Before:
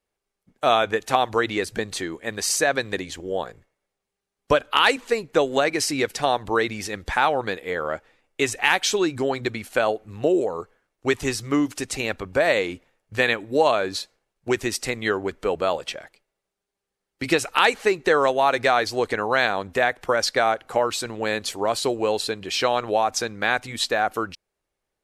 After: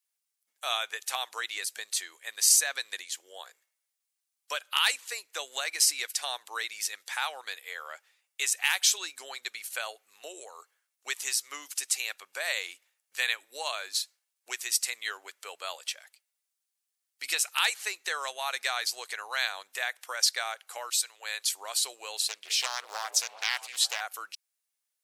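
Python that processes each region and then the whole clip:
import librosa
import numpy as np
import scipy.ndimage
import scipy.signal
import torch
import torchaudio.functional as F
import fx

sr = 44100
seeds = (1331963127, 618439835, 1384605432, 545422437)

y = fx.chain(x, sr, fx.highpass(hz=470.0, slope=12),
    fx.band_widen(depth_pct=40), at=(20.9, 21.43))
y = fx.chain(y, sr, fx.highpass(hz=160.0, slope=12),
    fx.echo_stepped(ms=198, hz=360.0, octaves=0.7, feedback_pct=70, wet_db=-9.0),
    fx.doppler_dist(depth_ms=0.56), at=(22.17, 24.01))
y = scipy.signal.sosfilt(scipy.signal.butter(2, 610.0, 'highpass', fs=sr, output='sos'), y)
y = np.diff(y, prepend=0.0)
y = F.gain(torch.from_numpy(y), 3.5).numpy()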